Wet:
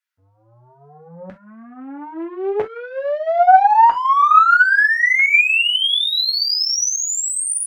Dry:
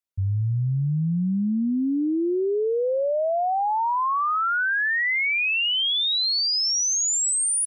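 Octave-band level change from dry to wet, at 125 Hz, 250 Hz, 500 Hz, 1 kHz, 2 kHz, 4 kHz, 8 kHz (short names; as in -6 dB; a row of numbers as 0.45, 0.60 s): under -20 dB, -10.0 dB, +2.0 dB, +11.5 dB, +9.0 dB, +4.5 dB, n/a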